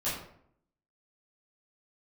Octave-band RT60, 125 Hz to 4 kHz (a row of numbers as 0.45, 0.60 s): 0.80, 0.80, 0.70, 0.60, 0.50, 0.40 s